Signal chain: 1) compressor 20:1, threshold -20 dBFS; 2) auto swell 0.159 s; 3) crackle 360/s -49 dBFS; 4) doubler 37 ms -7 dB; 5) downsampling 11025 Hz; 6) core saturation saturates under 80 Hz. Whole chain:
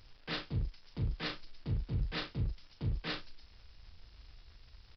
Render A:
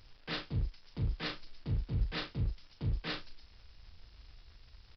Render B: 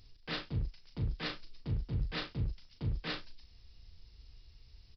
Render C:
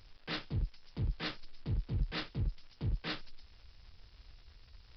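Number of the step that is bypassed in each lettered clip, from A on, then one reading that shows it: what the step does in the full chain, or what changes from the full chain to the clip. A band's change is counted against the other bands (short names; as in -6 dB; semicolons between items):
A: 6, momentary loudness spread change -15 LU; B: 3, momentary loudness spread change -16 LU; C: 4, momentary loudness spread change -16 LU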